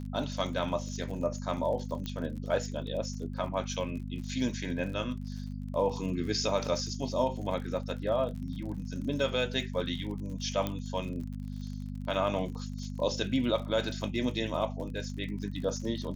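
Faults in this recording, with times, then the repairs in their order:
crackle 53 per s -40 dBFS
hum 50 Hz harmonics 5 -38 dBFS
2.06 s: pop -22 dBFS
10.67 s: pop -18 dBFS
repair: de-click; de-hum 50 Hz, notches 5

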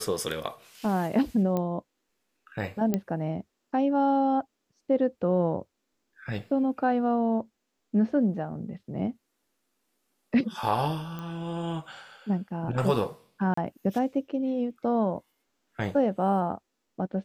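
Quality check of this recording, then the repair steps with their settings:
1.57 s: pop -17 dBFS
2.94 s: pop -13 dBFS
11.19 s: pop -24 dBFS
13.54–13.57 s: dropout 34 ms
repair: de-click; interpolate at 13.54 s, 34 ms

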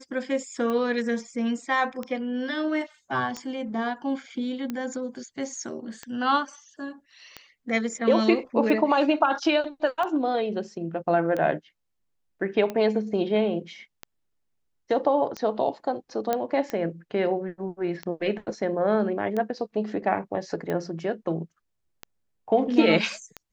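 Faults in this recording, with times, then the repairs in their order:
tick 45 rpm -18 dBFS
16.33 s: pop -11 dBFS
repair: de-click

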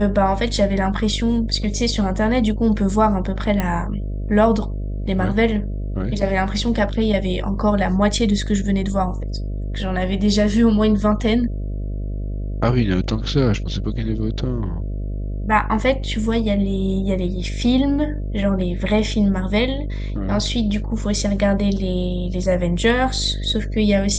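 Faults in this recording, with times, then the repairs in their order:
buzz 50 Hz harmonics 13 -25 dBFS
3.60 s: pop -8 dBFS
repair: de-click; de-hum 50 Hz, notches 13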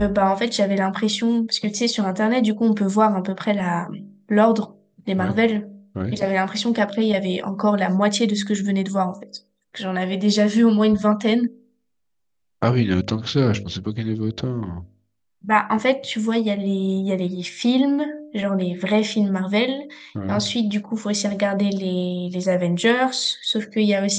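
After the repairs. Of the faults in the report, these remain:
nothing left

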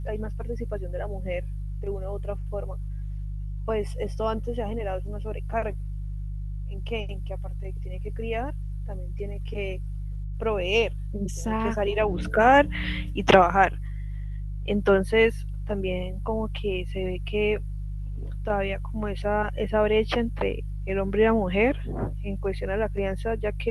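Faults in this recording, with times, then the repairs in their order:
hum 50 Hz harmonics 3 -32 dBFS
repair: de-hum 50 Hz, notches 3

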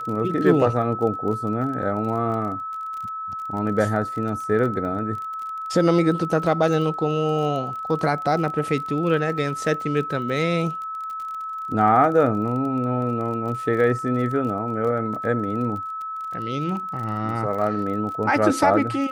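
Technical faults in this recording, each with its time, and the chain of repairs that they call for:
crackle 28 per s -31 dBFS
whine 1.3 kHz -28 dBFS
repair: de-click; band-stop 1.3 kHz, Q 30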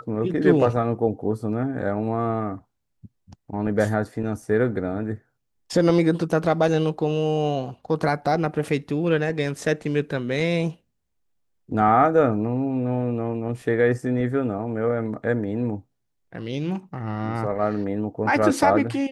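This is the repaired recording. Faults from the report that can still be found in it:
nothing left

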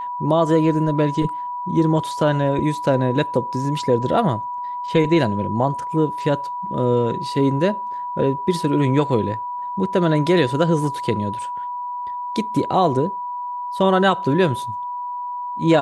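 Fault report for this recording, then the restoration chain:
whine 980 Hz -25 dBFS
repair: band-stop 980 Hz, Q 30

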